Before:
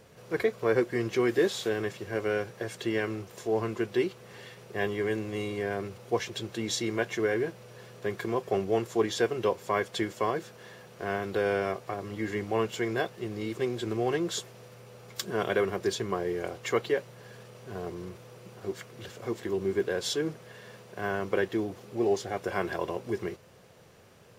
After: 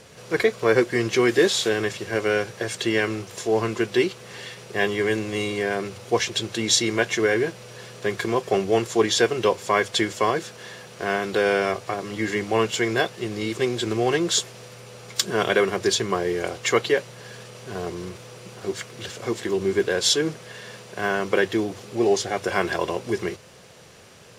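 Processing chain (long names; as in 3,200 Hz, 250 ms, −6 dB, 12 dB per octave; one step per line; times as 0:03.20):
low-pass filter 10,000 Hz 12 dB per octave
high-shelf EQ 2,100 Hz +8.5 dB
mains-hum notches 50/100 Hz
level +6 dB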